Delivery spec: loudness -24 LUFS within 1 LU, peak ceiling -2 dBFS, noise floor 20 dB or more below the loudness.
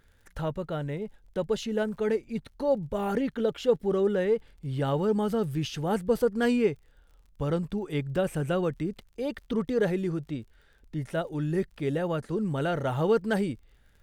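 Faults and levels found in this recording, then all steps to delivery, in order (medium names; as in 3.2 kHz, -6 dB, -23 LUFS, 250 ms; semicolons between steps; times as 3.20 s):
tick rate 33 per s; loudness -29.0 LUFS; peak level -12.5 dBFS; loudness target -24.0 LUFS
-> de-click; trim +5 dB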